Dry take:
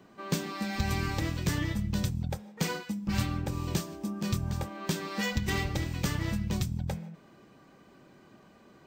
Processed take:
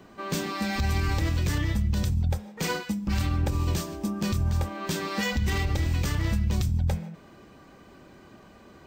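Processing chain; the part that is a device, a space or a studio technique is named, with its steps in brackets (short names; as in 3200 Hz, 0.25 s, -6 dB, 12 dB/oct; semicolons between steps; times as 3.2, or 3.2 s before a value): car stereo with a boomy subwoofer (resonant low shelf 100 Hz +6.5 dB, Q 1.5; limiter -23.5 dBFS, peak gain reduction 11 dB); gain +6 dB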